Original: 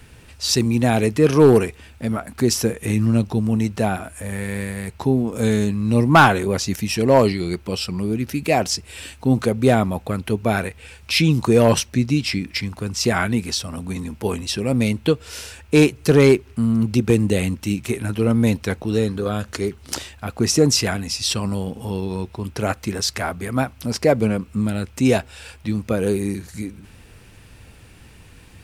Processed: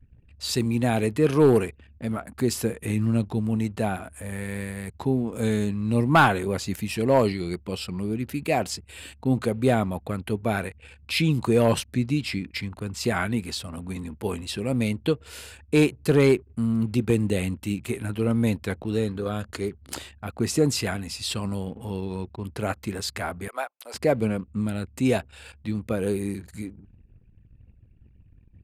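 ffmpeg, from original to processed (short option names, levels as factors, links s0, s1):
-filter_complex "[0:a]asettb=1/sr,asplit=3[s0][s1][s2];[s0]atrim=end=23.484[s3];[s1]atrim=start=23.48:end=23.94,asetpts=PTS-STARTPTS,afade=t=in:d=0.004:c=qsin,afade=t=out:st=0.456:d=0.004:c=qsin,highpass=f=520:w=0.5412,highpass=f=520:w=1.3066[s4];[s2]atrim=start=23.936[s5];[s3][s4]acrossfade=d=0.004:c1=hsin:c2=qsin[s6];[s6][s5]acrossfade=d=0.004:c1=qsin:c2=hsin,anlmdn=0.251,equalizer=f=5700:w=5.1:g=-11.5,volume=0.531"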